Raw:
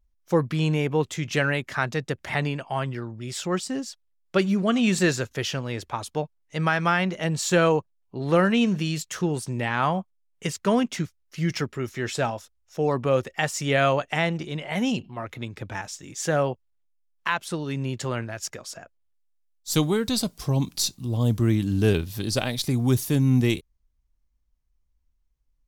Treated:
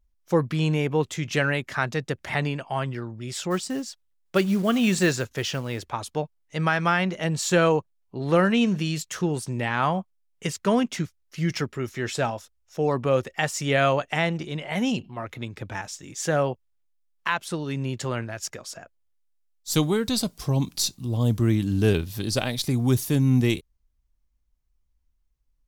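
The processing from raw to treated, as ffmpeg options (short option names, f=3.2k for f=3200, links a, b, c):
-filter_complex "[0:a]asplit=3[a][b][c];[a]afade=t=out:st=3.5:d=0.02[d];[b]acrusher=bits=6:mode=log:mix=0:aa=0.000001,afade=t=in:st=3.5:d=0.02,afade=t=out:st=5.83:d=0.02[e];[c]afade=t=in:st=5.83:d=0.02[f];[d][e][f]amix=inputs=3:normalize=0"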